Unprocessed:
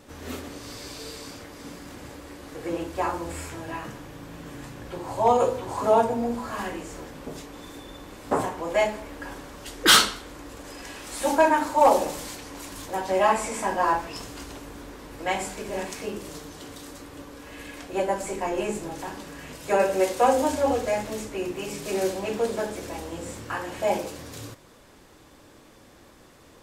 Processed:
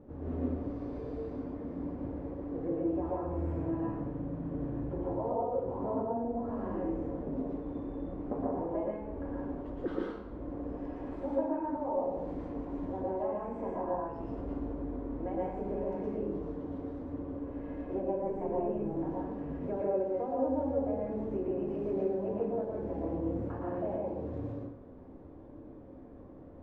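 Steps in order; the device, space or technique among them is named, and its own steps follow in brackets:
television next door (downward compressor 4 to 1, threshold −32 dBFS, peak gain reduction 16.5 dB; low-pass filter 510 Hz 12 dB per octave; convolution reverb RT60 0.55 s, pre-delay 108 ms, DRR −3.5 dB)

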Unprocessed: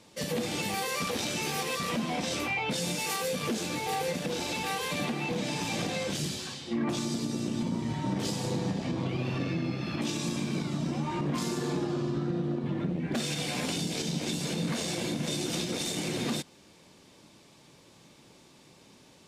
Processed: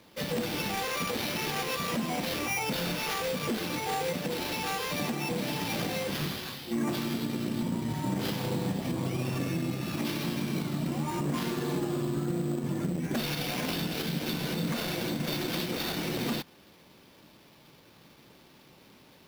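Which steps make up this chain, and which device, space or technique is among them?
early companding sampler (sample-rate reduction 8,100 Hz, jitter 0%; log-companded quantiser 6 bits)

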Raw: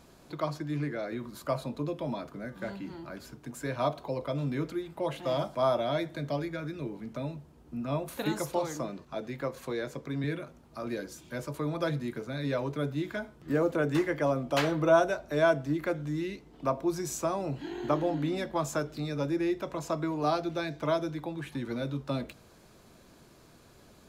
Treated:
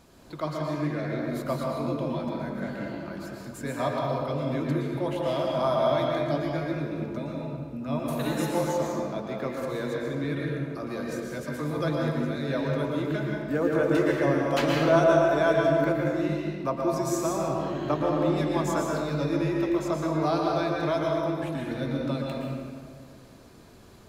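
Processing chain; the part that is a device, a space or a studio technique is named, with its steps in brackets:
stairwell (convolution reverb RT60 2.0 s, pre-delay 110 ms, DRR −2.5 dB)

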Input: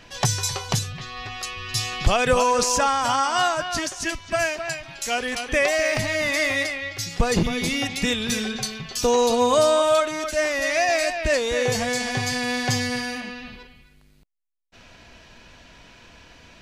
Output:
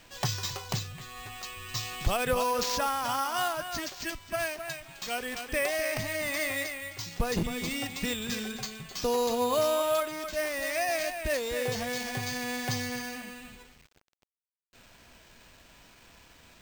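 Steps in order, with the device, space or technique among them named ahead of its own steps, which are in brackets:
early 8-bit sampler (sample-rate reduction 11,000 Hz, jitter 0%; bit reduction 8 bits)
level −8.5 dB

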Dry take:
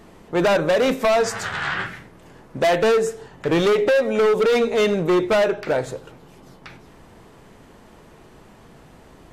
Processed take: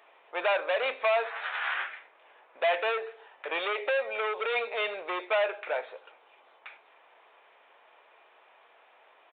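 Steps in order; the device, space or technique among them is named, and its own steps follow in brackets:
musical greeting card (downsampling to 8,000 Hz; high-pass filter 590 Hz 24 dB per octave; parametric band 2,400 Hz +7 dB 0.22 octaves)
level −6.5 dB

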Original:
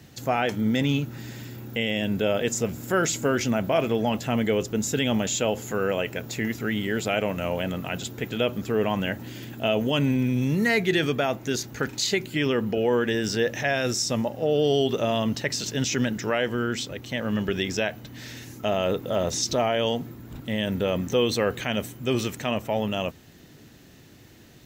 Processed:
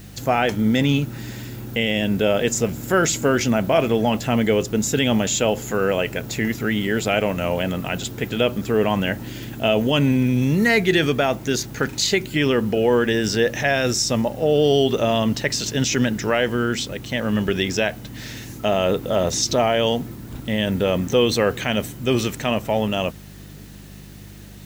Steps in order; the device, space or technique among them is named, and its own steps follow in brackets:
video cassette with head-switching buzz (hum with harmonics 50 Hz, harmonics 4, −47 dBFS −1 dB per octave; white noise bed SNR 31 dB)
level +5 dB

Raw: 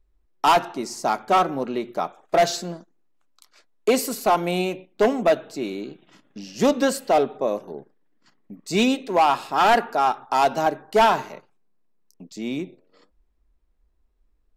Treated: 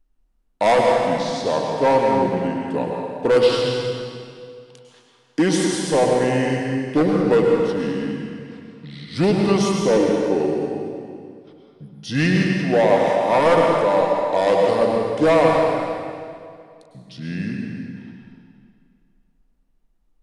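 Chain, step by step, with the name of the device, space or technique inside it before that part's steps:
slowed and reverbed (speed change −28%; convolution reverb RT60 2.3 s, pre-delay 95 ms, DRR 0 dB)

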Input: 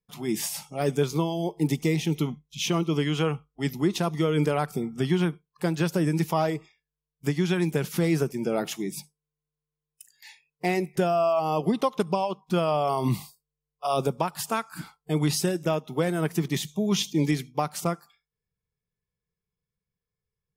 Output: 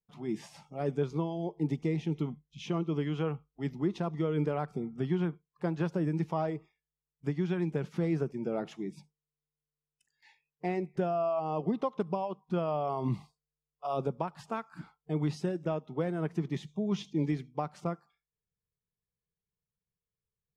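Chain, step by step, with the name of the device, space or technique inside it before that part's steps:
through cloth (low-pass filter 6,500 Hz 12 dB per octave; high-shelf EQ 2,400 Hz −14.5 dB)
0:05.28–0:05.95: dynamic equaliser 960 Hz, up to +4 dB, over −45 dBFS, Q 1.1
level −6 dB

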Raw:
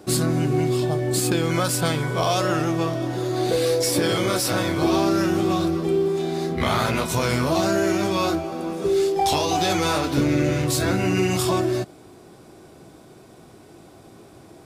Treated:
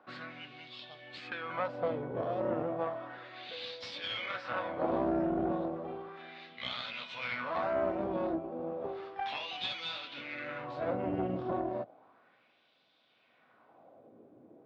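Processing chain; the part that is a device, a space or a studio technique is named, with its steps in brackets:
wah-wah guitar rig (LFO wah 0.33 Hz 360–3,700 Hz, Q 2; tube saturation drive 20 dB, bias 0.8; loudspeaker in its box 96–3,800 Hz, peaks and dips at 110 Hz +5 dB, 240 Hz +6 dB, 370 Hz −10 dB, 540 Hz +5 dB)

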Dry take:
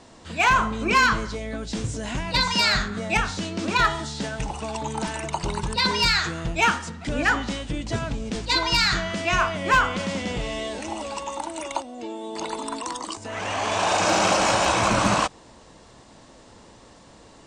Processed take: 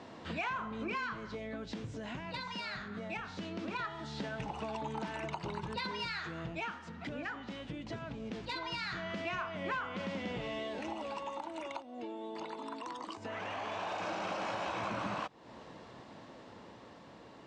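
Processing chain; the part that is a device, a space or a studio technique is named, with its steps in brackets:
AM radio (band-pass filter 110–3,300 Hz; downward compressor 5 to 1, threshold −36 dBFS, peak gain reduction 18.5 dB; soft clipping −24.5 dBFS, distortion −28 dB; amplitude tremolo 0.2 Hz, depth 34%)

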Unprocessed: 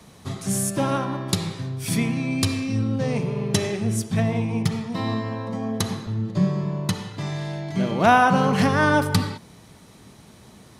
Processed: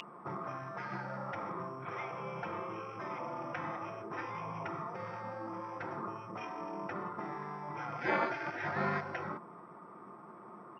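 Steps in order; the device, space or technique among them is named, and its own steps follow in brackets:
Butterworth low-pass 3,700 Hz 72 dB per octave
toy sound module (linearly interpolated sample-rate reduction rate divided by 6×; switching amplifier with a slow clock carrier 2,800 Hz; loudspeaker in its box 520–4,500 Hz, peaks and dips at 530 Hz −9 dB, 780 Hz −7 dB, 1,200 Hz +8 dB, 1,700 Hz −7 dB, 2,900 Hz −7 dB, 4,100 Hz −8 dB)
gate on every frequency bin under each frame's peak −20 dB weak
comb filter 5.7 ms, depth 43%
level +7.5 dB

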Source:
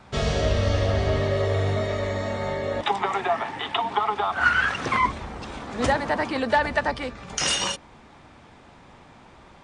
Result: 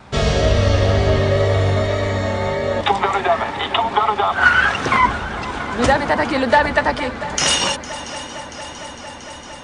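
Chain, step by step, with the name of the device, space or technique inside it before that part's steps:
multi-head tape echo (echo machine with several playback heads 228 ms, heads second and third, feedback 75%, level −17 dB; tape wow and flutter 22 cents)
level +7 dB

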